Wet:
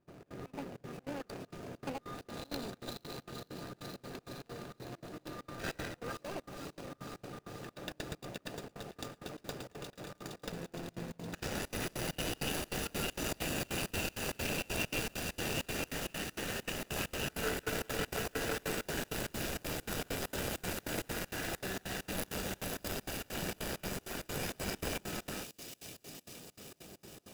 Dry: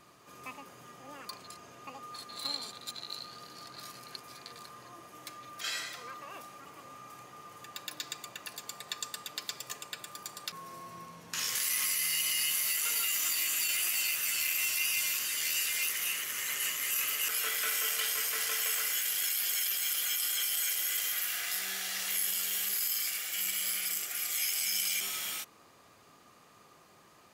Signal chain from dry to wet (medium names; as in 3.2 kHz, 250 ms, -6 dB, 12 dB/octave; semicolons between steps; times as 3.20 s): median filter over 41 samples; feedback echo behind a high-pass 465 ms, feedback 75%, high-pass 3.6 kHz, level -5.5 dB; trance gate ".xx.xx.xxx.xx" 197 bpm -24 dB; trim +12.5 dB